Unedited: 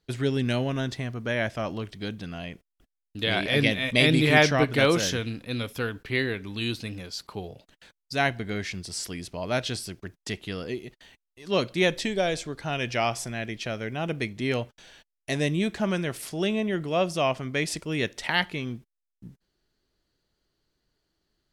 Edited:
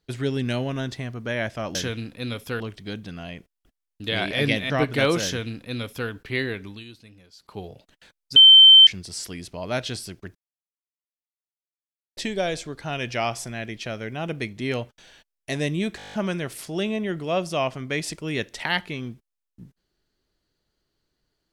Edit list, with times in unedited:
3.85–4.50 s: delete
5.04–5.89 s: copy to 1.75 s
6.45–7.39 s: dip -14.5 dB, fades 0.19 s
8.16–8.67 s: bleep 3.1 kHz -6.5 dBFS
10.15–11.97 s: mute
15.77 s: stutter 0.02 s, 9 plays

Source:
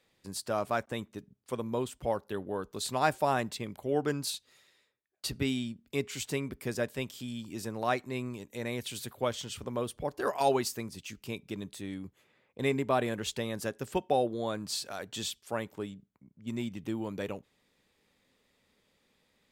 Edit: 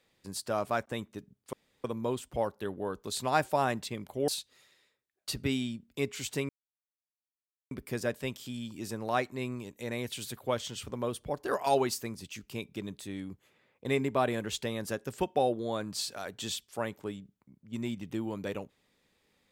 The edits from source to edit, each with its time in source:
1.53 s: insert room tone 0.31 s
3.97–4.24 s: delete
6.45 s: insert silence 1.22 s

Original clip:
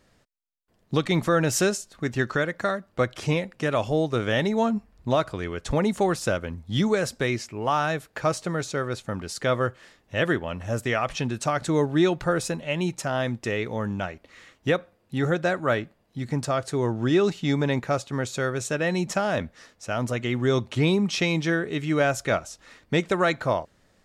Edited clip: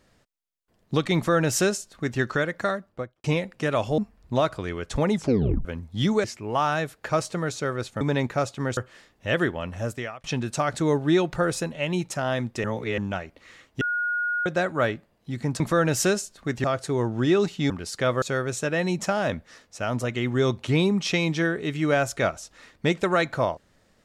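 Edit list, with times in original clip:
1.16–2.20 s: copy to 16.48 s
2.70–3.24 s: studio fade out
3.98–4.73 s: delete
5.87 s: tape stop 0.53 s
6.99–7.36 s: delete
9.13–9.65 s: swap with 17.54–18.30 s
10.65–11.12 s: fade out
13.52–13.86 s: reverse
14.69–15.34 s: bleep 1.44 kHz -23 dBFS

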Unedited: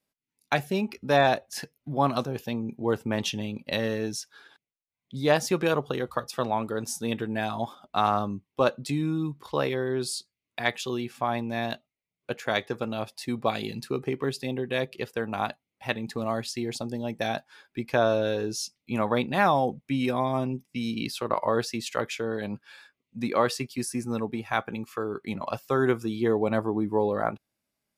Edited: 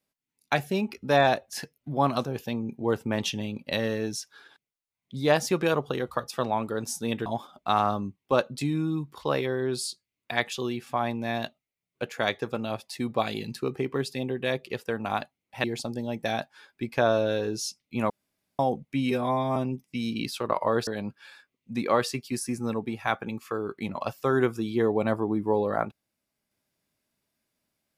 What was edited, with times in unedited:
7.26–7.54 s: delete
15.92–16.60 s: delete
19.06–19.55 s: room tone
20.07–20.37 s: stretch 1.5×
21.68–22.33 s: delete

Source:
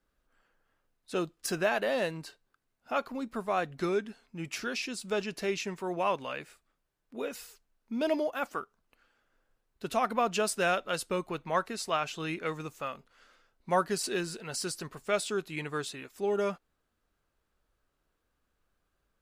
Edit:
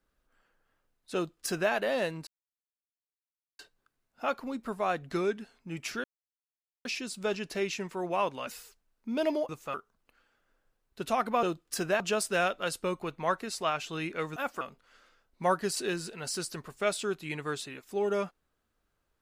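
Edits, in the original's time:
1.15–1.72 s: copy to 10.27 s
2.27 s: insert silence 1.32 s
4.72 s: insert silence 0.81 s
6.34–7.31 s: delete
8.33–8.58 s: swap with 12.63–12.88 s

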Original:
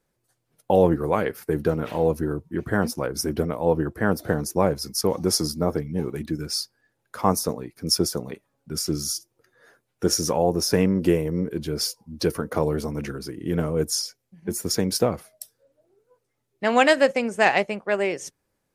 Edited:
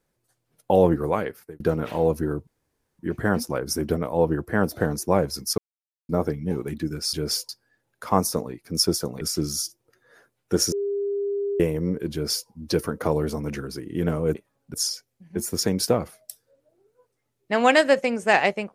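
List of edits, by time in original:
1.05–1.60 s: fade out
2.47 s: insert room tone 0.52 s
5.06–5.57 s: mute
8.33–8.72 s: move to 13.86 s
10.23–11.11 s: bleep 402 Hz -23 dBFS
11.63–11.99 s: copy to 6.61 s

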